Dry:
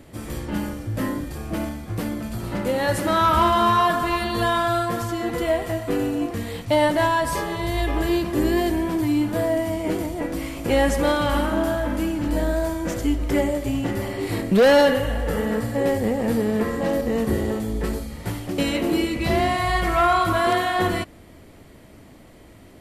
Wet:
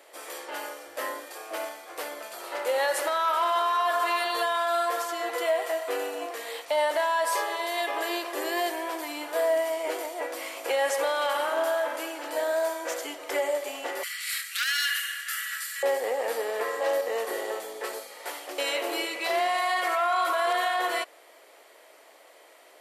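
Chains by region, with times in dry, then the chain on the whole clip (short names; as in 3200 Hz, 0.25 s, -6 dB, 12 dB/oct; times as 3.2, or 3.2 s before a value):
14.03–15.83 steep high-pass 1300 Hz 72 dB/oct + high shelf 3400 Hz +9.5 dB
whole clip: inverse Chebyshev high-pass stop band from 190 Hz, stop band 50 dB; limiter -17.5 dBFS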